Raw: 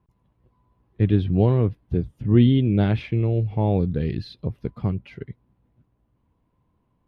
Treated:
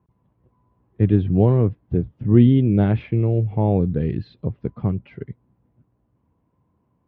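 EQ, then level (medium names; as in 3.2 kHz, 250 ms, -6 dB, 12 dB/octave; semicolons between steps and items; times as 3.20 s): high-pass 74 Hz; low-pass 3.3 kHz 12 dB/octave; treble shelf 2.2 kHz -10 dB; +3.0 dB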